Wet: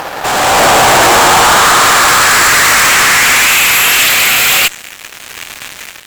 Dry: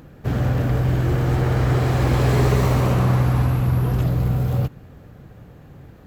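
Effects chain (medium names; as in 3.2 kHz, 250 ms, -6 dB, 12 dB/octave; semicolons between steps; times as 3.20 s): high-pass sweep 840 Hz -> 2.4 kHz, 1.07–3.60 s; fuzz box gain 49 dB, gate -56 dBFS; dynamic bell 7.5 kHz, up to +7 dB, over -40 dBFS, Q 3.9; level rider gain up to 11.5 dB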